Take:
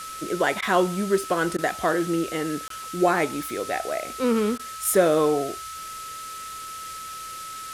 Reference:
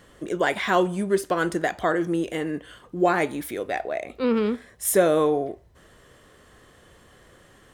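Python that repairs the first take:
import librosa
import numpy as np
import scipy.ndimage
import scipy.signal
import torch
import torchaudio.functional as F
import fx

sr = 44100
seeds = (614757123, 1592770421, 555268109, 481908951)

y = fx.notch(x, sr, hz=1300.0, q=30.0)
y = fx.fix_interpolate(y, sr, at_s=(2.68,), length_ms=23.0)
y = fx.fix_interpolate(y, sr, at_s=(0.61, 1.57, 4.58), length_ms=12.0)
y = fx.noise_reduce(y, sr, print_start_s=6.13, print_end_s=6.63, reduce_db=17.0)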